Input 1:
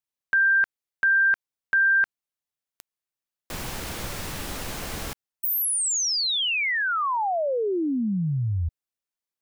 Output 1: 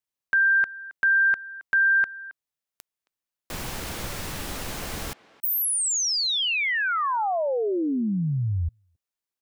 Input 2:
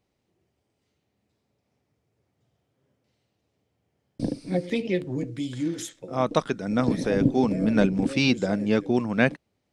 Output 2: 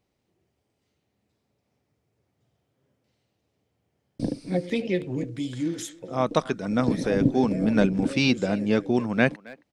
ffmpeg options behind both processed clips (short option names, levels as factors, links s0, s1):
-filter_complex "[0:a]asplit=2[s0][s1];[s1]adelay=270,highpass=300,lowpass=3400,asoftclip=type=hard:threshold=0.188,volume=0.112[s2];[s0][s2]amix=inputs=2:normalize=0"